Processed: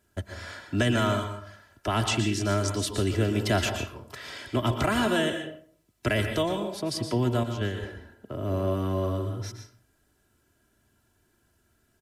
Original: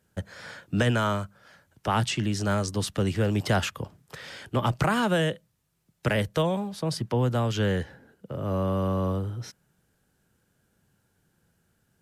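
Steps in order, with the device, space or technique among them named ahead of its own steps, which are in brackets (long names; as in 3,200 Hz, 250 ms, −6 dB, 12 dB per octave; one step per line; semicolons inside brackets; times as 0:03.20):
0:07.43–0:07.83: noise gate −23 dBFS, range −11 dB
microphone above a desk (comb filter 3 ms, depth 68%; convolution reverb RT60 0.50 s, pre-delay 111 ms, DRR 6 dB)
dynamic equaliser 1,000 Hz, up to −5 dB, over −40 dBFS, Q 1.2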